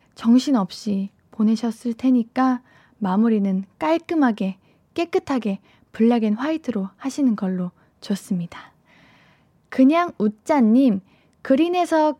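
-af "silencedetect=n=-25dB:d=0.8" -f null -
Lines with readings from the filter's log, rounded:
silence_start: 8.52
silence_end: 9.72 | silence_duration: 1.20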